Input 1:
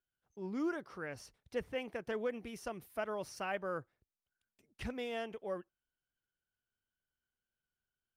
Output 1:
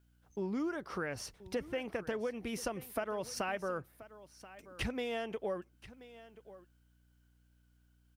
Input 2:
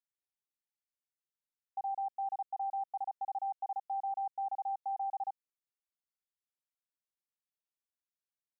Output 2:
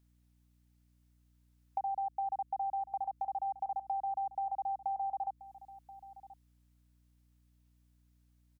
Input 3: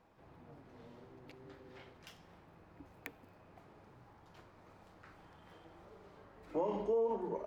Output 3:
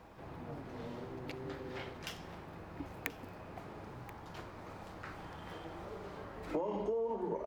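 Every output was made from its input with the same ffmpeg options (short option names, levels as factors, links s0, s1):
-af "acompressor=threshold=0.00562:ratio=8,aeval=exprs='val(0)+0.000112*(sin(2*PI*60*n/s)+sin(2*PI*2*60*n/s)/2+sin(2*PI*3*60*n/s)/3+sin(2*PI*4*60*n/s)/4+sin(2*PI*5*60*n/s)/5)':c=same,aecho=1:1:1031:0.141,volume=3.76"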